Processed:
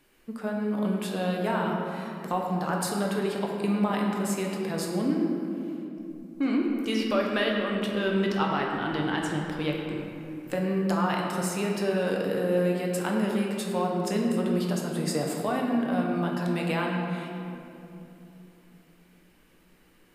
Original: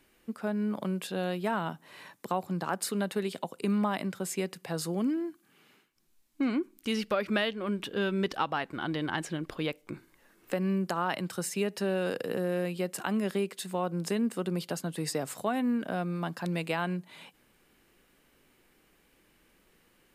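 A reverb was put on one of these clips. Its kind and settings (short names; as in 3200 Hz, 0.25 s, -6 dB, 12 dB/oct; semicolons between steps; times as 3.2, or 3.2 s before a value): shoebox room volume 120 m³, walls hard, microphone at 0.46 m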